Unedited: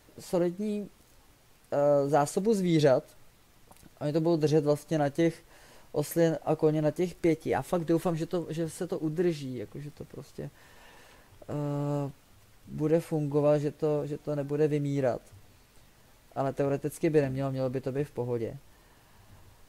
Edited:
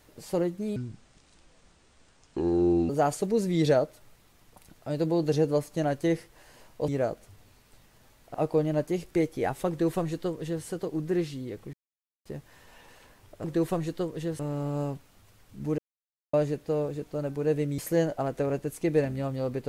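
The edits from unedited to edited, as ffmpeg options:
-filter_complex "[0:a]asplit=13[a][b][c][d][e][f][g][h][i][j][k][l][m];[a]atrim=end=0.764[n];[b]atrim=start=0.76:end=2.04,asetpts=PTS-STARTPTS,asetrate=26460,aresample=44100[o];[c]atrim=start=2.036:end=6.032[p];[d]atrim=start=14.918:end=16.382[q];[e]atrim=start=6.428:end=9.82,asetpts=PTS-STARTPTS,afade=t=out:st=3.388:d=0.004:c=hsin[r];[f]atrim=start=9.82:end=10.34,asetpts=PTS-STARTPTS,volume=0[s];[g]atrim=start=10.34:end=11.532,asetpts=PTS-STARTPTS,afade=t=in:d=0.004:c=hsin[t];[h]atrim=start=7.778:end=8.732[u];[i]atrim=start=11.528:end=12.92,asetpts=PTS-STARTPTS,afade=t=out:st=1.388:d=0.004:c=hsin[v];[j]atrim=start=12.92:end=13.47,asetpts=PTS-STARTPTS,volume=0[w];[k]atrim=start=13.47:end=14.922,asetpts=PTS-STARTPTS,afade=t=in:d=0.004:c=hsin[x];[l]atrim=start=6.028:end=6.432[y];[m]atrim=start=16.378[z];[n][o]acrossfade=d=0.004:c1=hsin:c2=hsin[aa];[aa][p]acrossfade=d=0.004:c1=hsin:c2=hsin[ab];[ab][q]acrossfade=d=0.004:c1=hsin:c2=hsin[ac];[r][s][t]concat=n=3:v=0:a=1[ad];[ac][ad]acrossfade=d=0.004:c1=hsin:c2=hsin[ae];[ae][u]acrossfade=d=0.004:c1=hsin:c2=hsin[af];[v][w][x]concat=n=3:v=0:a=1[ag];[af][ag]acrossfade=d=0.004:c1=hsin:c2=hsin[ah];[ah][y]acrossfade=d=0.004:c1=hsin:c2=hsin[ai];[ai][z]acrossfade=d=0.004:c1=hsin:c2=hsin"

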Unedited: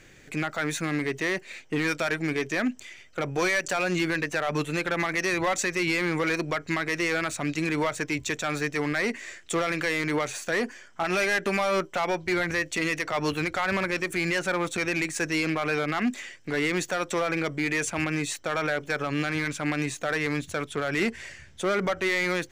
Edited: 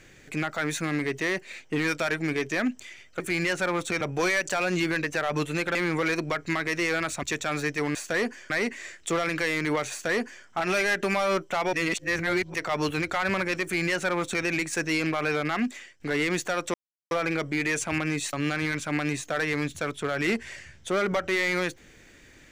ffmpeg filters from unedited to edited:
-filter_complex "[0:a]asplit=12[a][b][c][d][e][f][g][h][i][j][k][l];[a]atrim=end=3.202[m];[b]atrim=start=14.058:end=14.872[n];[c]atrim=start=3.198:end=4.942[o];[d]atrim=start=5.958:end=7.442[p];[e]atrim=start=8.208:end=8.932[q];[f]atrim=start=10.328:end=10.882[r];[g]atrim=start=8.928:end=12.162[s];[h]atrim=start=12.158:end=12.972,asetpts=PTS-STARTPTS,areverse[t];[i]atrim=start=12.968:end=16.43,asetpts=PTS-STARTPTS,afade=t=out:st=3.012:d=0.45:silence=0.298538[u];[j]atrim=start=16.43:end=17.17,asetpts=PTS-STARTPTS,afade=t=in:d=0.004:c=hsin:silence=0.298538,afade=t=out:st=0.736:d=0.004:c=hsin,apad=pad_dur=0.37[v];[k]atrim=start=17.17:end=18.392,asetpts=PTS-STARTPTS,afade=t=in:d=0.004:c=hsin[w];[l]atrim=start=19.058[x];[m][n]acrossfade=d=0.004:c1=hsin:c2=hsin[y];[y][o]acrossfade=d=0.004:c1=hsin:c2=hsin[z];[z][p]acrossfade=d=0.004:c1=hsin:c2=hsin[aa];[aa][q]acrossfade=d=0.004:c1=hsin:c2=hsin[ab];[ab][r]acrossfade=d=0.004:c1=hsin:c2=hsin[ac];[ac][s]acrossfade=d=0.004:c1=hsin:c2=hsin[ad];[ad][t]acrossfade=d=0.004:c1=hsin:c2=hsin[ae];[u][v][w]concat=n=3:v=0:a=1[af];[ae][af]acrossfade=d=0.004:c1=hsin:c2=hsin[ag];[ag][x]acrossfade=d=0.004:c1=hsin:c2=hsin"

